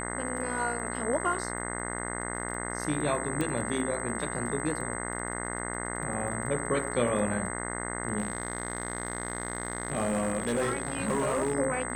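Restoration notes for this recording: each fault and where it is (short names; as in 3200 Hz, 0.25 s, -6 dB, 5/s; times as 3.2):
buzz 60 Hz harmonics 35 -36 dBFS
crackle 26/s -39 dBFS
tone 8200 Hz -38 dBFS
3.41 pop -17 dBFS
8.18–11.55 clipped -23.5 dBFS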